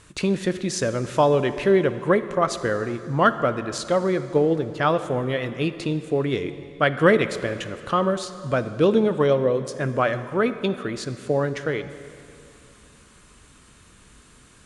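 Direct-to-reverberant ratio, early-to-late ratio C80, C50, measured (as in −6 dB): 11.0 dB, 12.5 dB, 12.0 dB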